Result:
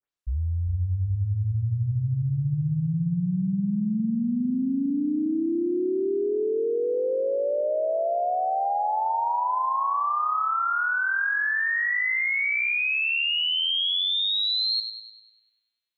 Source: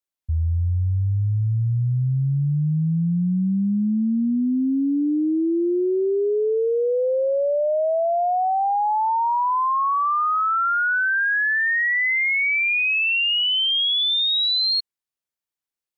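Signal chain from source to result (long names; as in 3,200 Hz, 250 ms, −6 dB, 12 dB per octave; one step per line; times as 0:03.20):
turntable start at the beginning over 0.39 s
echo with a time of its own for lows and highs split 960 Hz, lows 403 ms, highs 99 ms, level −8.5 dB
level −5 dB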